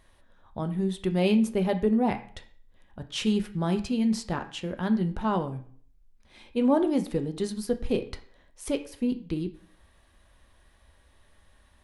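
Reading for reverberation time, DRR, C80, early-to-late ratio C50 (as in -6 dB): 0.50 s, 6.0 dB, 17.0 dB, 13.0 dB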